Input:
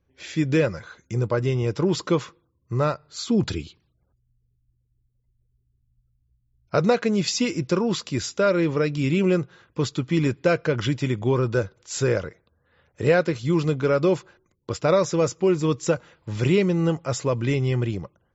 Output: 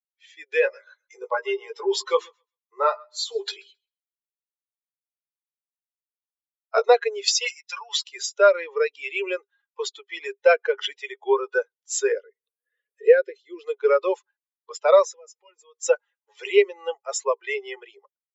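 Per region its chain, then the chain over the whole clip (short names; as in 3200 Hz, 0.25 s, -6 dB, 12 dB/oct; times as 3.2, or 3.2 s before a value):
0.6–6.85 doubler 18 ms -4.5 dB + de-hum 67.61 Hz, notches 21 + thinning echo 0.132 s, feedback 34%, high-pass 410 Hz, level -15 dB
7.47–8.04 HPF 1200 Hz + comb 7 ms, depth 75%
12.12–13.63 tilt -2 dB/oct + upward compressor, threshold -34 dBFS + fixed phaser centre 350 Hz, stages 4
15.05–15.82 notch comb 380 Hz + compressor 20:1, threshold -30 dBFS
whole clip: per-bin expansion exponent 2; Chebyshev high-pass 400 Hz, order 8; AGC gain up to 11 dB; gain -1.5 dB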